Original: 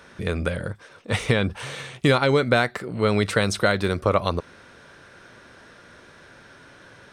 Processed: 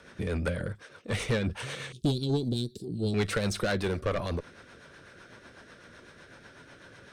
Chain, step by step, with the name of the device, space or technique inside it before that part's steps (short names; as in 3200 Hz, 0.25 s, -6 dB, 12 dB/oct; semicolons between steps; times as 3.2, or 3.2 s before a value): 1.92–3.14 elliptic band-stop 370–3800 Hz, stop band 40 dB; overdriven rotary cabinet (tube stage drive 20 dB, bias 0.3; rotary speaker horn 8 Hz)